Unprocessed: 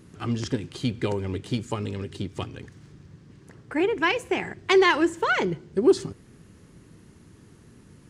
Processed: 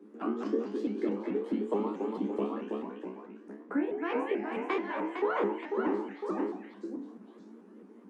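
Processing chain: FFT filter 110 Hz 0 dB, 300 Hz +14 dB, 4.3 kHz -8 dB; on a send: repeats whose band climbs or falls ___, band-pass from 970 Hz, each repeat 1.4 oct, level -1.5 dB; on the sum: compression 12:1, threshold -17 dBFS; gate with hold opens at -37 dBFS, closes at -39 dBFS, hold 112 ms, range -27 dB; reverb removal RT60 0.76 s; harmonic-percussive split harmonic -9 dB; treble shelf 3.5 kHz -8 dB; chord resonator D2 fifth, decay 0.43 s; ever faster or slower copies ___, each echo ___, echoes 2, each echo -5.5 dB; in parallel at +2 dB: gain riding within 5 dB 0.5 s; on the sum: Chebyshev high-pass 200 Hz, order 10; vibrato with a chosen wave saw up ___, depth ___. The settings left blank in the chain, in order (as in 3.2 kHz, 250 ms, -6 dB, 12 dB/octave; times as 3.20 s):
110 ms, 178 ms, -1 st, 4.6 Hz, 160 cents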